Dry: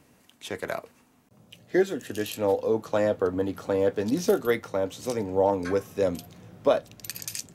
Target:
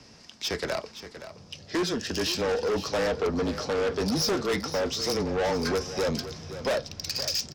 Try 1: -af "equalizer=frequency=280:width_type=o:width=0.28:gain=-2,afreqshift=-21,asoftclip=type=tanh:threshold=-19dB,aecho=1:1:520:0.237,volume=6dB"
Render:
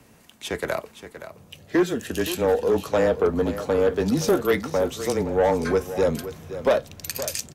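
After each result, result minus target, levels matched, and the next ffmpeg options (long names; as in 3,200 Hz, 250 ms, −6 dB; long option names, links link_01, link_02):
4,000 Hz band −10.0 dB; soft clipping: distortion −9 dB
-af "lowpass=frequency=5200:width_type=q:width=7,equalizer=frequency=280:width_type=o:width=0.28:gain=-2,afreqshift=-21,asoftclip=type=tanh:threshold=-19dB,aecho=1:1:520:0.237,volume=6dB"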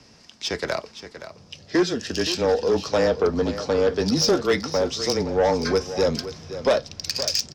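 soft clipping: distortion −8 dB
-af "lowpass=frequency=5200:width_type=q:width=7,equalizer=frequency=280:width_type=o:width=0.28:gain=-2,afreqshift=-21,asoftclip=type=tanh:threshold=-29.5dB,aecho=1:1:520:0.237,volume=6dB"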